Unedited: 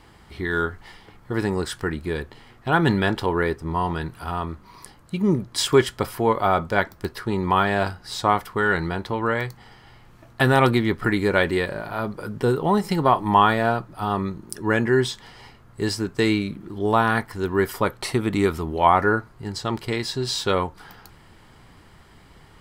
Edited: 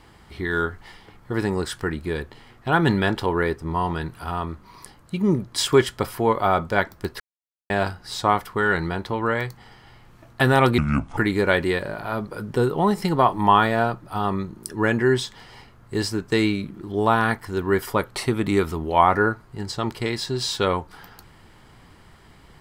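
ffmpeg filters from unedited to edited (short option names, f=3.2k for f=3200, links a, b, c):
-filter_complex "[0:a]asplit=5[a][b][c][d][e];[a]atrim=end=7.2,asetpts=PTS-STARTPTS,afade=t=out:st=7.196:d=0.004:c=hsin[f];[b]atrim=start=7.2:end=7.7,asetpts=PTS-STARTPTS,volume=0[g];[c]atrim=start=7.7:end=10.784,asetpts=PTS-STARTPTS,afade=t=in:d=0.004:c=hsin[h];[d]atrim=start=10.78:end=11.04,asetpts=PTS-STARTPTS,asetrate=29106,aresample=44100[i];[e]atrim=start=11.036[j];[f][g][h]concat=n=3:v=0:a=1[k];[k][i]acrossfade=d=0.004:c1=hsin:c2=hsin[l];[l][j]acrossfade=d=0.004:c1=hsin:c2=hsin"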